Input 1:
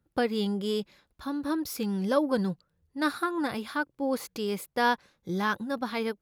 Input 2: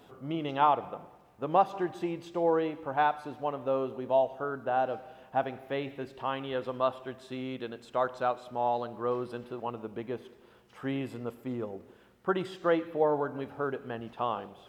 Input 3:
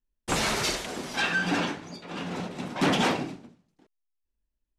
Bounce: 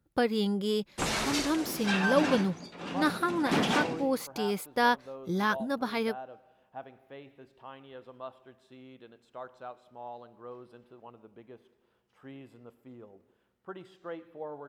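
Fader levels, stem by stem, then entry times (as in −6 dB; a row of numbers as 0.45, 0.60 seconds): 0.0, −14.0, −4.0 decibels; 0.00, 1.40, 0.70 seconds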